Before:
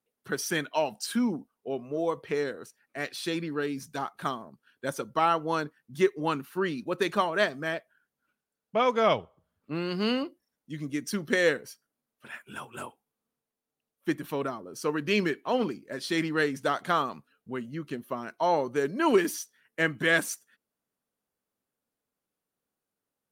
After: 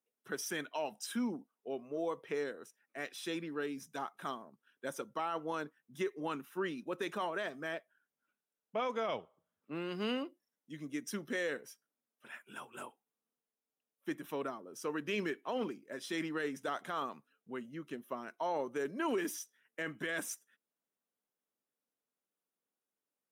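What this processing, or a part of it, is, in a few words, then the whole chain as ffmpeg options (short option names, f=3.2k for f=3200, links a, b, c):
PA system with an anti-feedback notch: -af "highpass=200,asuperstop=centerf=4400:order=4:qfactor=6.3,alimiter=limit=-20dB:level=0:latency=1:release=12,volume=-7dB"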